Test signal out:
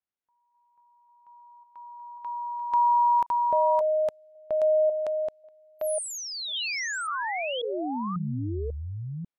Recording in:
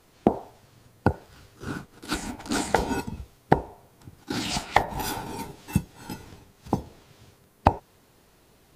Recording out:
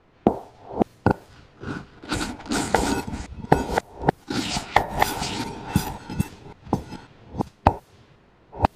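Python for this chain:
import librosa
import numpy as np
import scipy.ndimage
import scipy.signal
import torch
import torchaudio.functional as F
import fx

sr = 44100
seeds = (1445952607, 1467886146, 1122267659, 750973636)

y = fx.reverse_delay(x, sr, ms=544, wet_db=-2.5)
y = fx.env_lowpass(y, sr, base_hz=2300.0, full_db=-22.5)
y = y * 10.0 ** (2.0 / 20.0)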